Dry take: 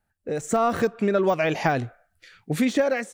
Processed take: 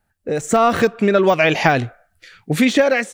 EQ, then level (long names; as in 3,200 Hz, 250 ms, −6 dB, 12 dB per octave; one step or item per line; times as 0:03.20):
dynamic equaliser 2,900 Hz, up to +6 dB, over −40 dBFS, Q 0.89
+6.5 dB